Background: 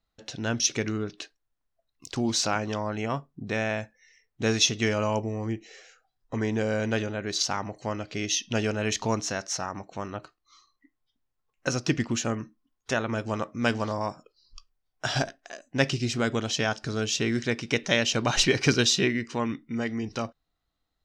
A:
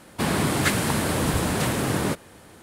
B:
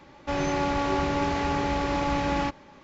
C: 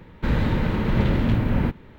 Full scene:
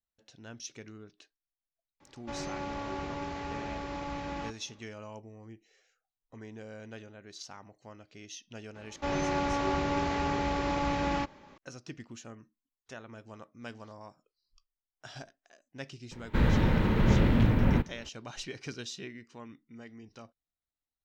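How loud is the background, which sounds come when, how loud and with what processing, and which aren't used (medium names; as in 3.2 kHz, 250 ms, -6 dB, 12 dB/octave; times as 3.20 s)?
background -18.5 dB
2.00 s: add B -11.5 dB
8.75 s: add B -4 dB
16.11 s: add C -3 dB
not used: A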